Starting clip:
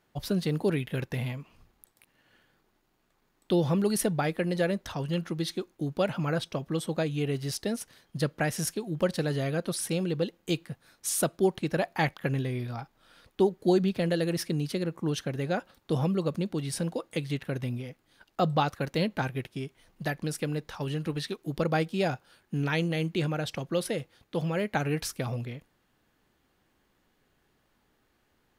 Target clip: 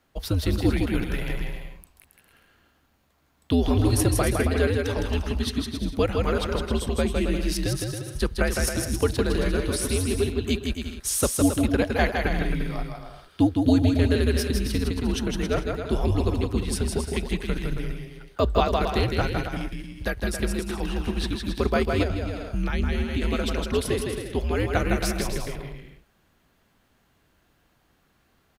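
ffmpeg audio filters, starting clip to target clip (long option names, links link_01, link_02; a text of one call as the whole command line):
ffmpeg -i in.wav -filter_complex "[0:a]aecho=1:1:160|272|350.4|405.3|443.7:0.631|0.398|0.251|0.158|0.1,afreqshift=-97,asettb=1/sr,asplit=3[link_01][link_02][link_03];[link_01]atrim=end=22.034[link_04];[link_02]atrim=start=22.03:end=23.22,asetpts=PTS-STARTPTS,afade=type=in:duration=0.004:curve=qsin,afade=type=out:start_time=1.186:duration=0.004:curve=qsin,acrossover=split=250[link_05][link_06];[link_06]acompressor=threshold=-36dB:ratio=3[link_07];[link_05][link_07]amix=inputs=2:normalize=0[link_08];[link_03]atrim=start=23.216[link_09];[link_04][link_08]acrossfade=duration=0.004:curve1=hsin:curve2=qsin[link_10];[link_10][link_09]acrossfade=duration=0.004:curve1=qsin:curve2=hsin,volume=3.5dB" out.wav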